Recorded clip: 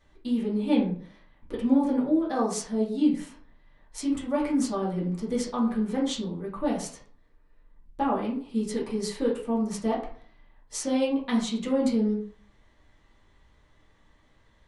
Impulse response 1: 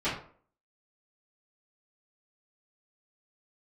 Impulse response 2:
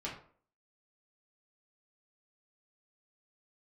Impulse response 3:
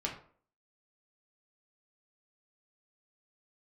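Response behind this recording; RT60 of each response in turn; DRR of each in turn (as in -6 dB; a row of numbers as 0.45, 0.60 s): 2; 0.50, 0.50, 0.50 s; -16.0, -6.0, -2.0 dB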